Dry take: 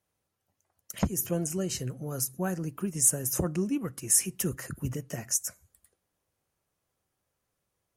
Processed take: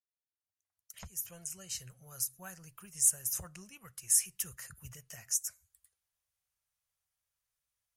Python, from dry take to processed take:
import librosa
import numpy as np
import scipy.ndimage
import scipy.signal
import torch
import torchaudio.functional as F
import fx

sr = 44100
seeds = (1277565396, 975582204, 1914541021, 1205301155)

y = fx.fade_in_head(x, sr, length_s=1.85)
y = fx.tone_stack(y, sr, knobs='10-0-10')
y = y * 10.0 ** (-3.0 / 20.0)